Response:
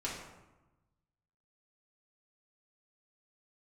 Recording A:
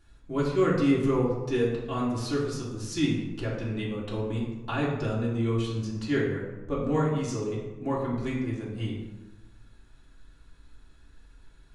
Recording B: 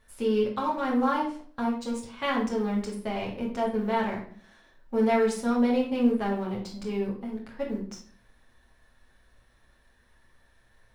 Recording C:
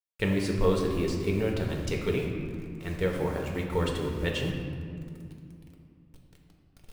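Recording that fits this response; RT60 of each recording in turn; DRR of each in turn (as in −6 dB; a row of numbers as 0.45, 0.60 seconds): A; 1.1, 0.50, 2.4 seconds; −6.5, −4.0, −0.5 decibels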